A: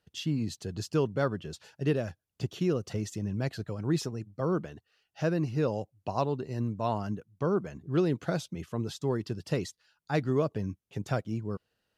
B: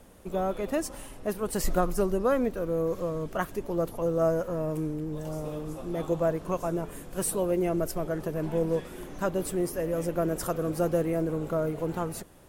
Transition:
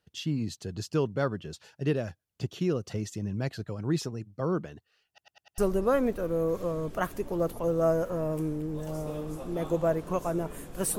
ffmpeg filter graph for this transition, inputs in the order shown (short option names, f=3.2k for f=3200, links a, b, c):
-filter_complex "[0:a]apad=whole_dur=10.98,atrim=end=10.98,asplit=5[a][b][c][d][e];[a]atrim=end=5.182[f];[b]atrim=start=5.078:end=5.182[g];[c]atrim=start=5.078:end=5.182[h];[d]atrim=start=5.078:end=5.182[i];[e]atrim=start=5.078:end=5.182[j];[1:a]atrim=start=1.958:end=7.36[k];[f][g]acrossfade=d=0.004:c1=hsin:c2=hsin[l];[l][h]acrossfade=d=0.004:c1=hsin:c2=hsin[m];[m][i]acrossfade=d=0.004:c1=hsin:c2=hsin[n];[n][j]acrossfade=d=0.004:c1=hsin:c2=hsin[o];[o][k]acrossfade=d=0.004:c1=hsin:c2=hsin"